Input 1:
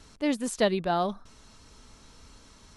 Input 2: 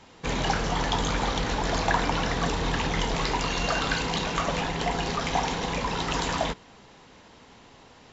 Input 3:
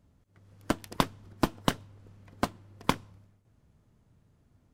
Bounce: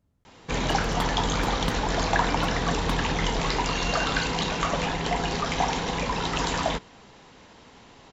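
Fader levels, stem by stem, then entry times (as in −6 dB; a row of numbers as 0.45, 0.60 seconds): muted, +1.0 dB, −6.0 dB; muted, 0.25 s, 0.00 s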